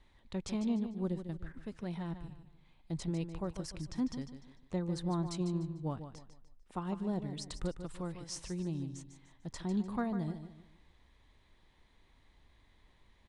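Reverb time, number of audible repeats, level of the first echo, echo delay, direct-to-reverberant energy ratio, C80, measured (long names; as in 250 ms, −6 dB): no reverb audible, 3, −10.0 dB, 149 ms, no reverb audible, no reverb audible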